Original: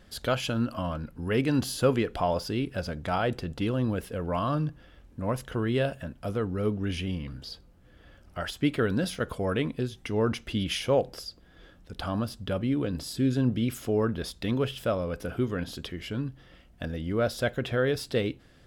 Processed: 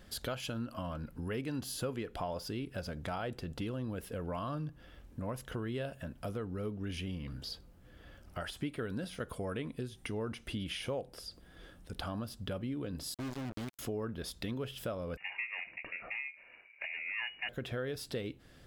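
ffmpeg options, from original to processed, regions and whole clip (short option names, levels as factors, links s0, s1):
-filter_complex "[0:a]asettb=1/sr,asplit=3[s0][s1][s2];[s0]atrim=end=8.414[s3];[s1]atrim=start=8.41:end=11.95,asetpts=PTS-STARTPTS,afade=t=in:d=0.004:c=qsin,afade=t=out:st=3.536:d=0.004:c=qsin,acrossover=split=4100[s4][s5];[s5]acompressor=threshold=0.00398:ratio=4:attack=1:release=60[s6];[s4][s6]amix=inputs=2:normalize=0,equalizer=f=9200:w=5.4:g=10.5[s7];[s2]atrim=start=11.946[s8];[s3][s7]acrossfade=d=0.004:c1=hsin:c2=qsin[s9];[s9][s8]acrossfade=d=0.004:c1=qsin:c2=hsin,asettb=1/sr,asplit=3[s10][s11][s12];[s10]atrim=end=13.144[s13];[s11]atrim=start=13.14:end=13.79,asetpts=PTS-STARTPTS,afade=t=in:d=0.004:c=qsin,afade=t=out:st=0.646:d=0.004:c=qsin,acrusher=bits=3:mix=0:aa=0.5,highshelf=f=11000:g=-10,asoftclip=type=hard:threshold=0.0335[s14];[s12]atrim=start=13.786[s15];[s13][s14]acrossfade=d=0.004:c1=hsin:c2=qsin[s16];[s16][s15]acrossfade=d=0.004:c1=qsin:c2=hsin,asettb=1/sr,asplit=3[s17][s18][s19];[s17]atrim=end=15.174[s20];[s18]atrim=start=15.17:end=17.49,asetpts=PTS-STARTPTS,afade=t=in:d=0.004:c=qsin,afade=t=out:st=2.316:d=0.004:c=qsin,aeval=exprs='val(0)*sin(2*PI*600*n/s)':c=same,lowpass=f=2500:t=q:w=0.5098,lowpass=f=2500:t=q:w=0.6013,lowpass=f=2500:t=q:w=0.9,lowpass=f=2500:t=q:w=2.563,afreqshift=-2900[s21];[s19]atrim=start=17.486[s22];[s20][s21]acrossfade=d=0.004:c1=hsin:c2=qsin[s23];[s23][s22]acrossfade=d=0.004:c1=qsin:c2=hsin,highshelf=f=11000:g=7.5,acompressor=threshold=0.0141:ratio=3,volume=0.891"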